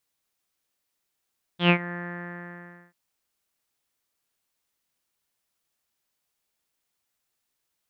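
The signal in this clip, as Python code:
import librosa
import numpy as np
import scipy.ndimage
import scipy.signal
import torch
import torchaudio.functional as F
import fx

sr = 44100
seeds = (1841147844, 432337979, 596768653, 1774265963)

y = fx.sub_voice(sr, note=53, wave='saw', cutoff_hz=1800.0, q=7.6, env_oct=1.0, env_s=0.24, attack_ms=108.0, decay_s=0.08, sustain_db=-18.0, release_s=1.0, note_s=0.34, slope=24)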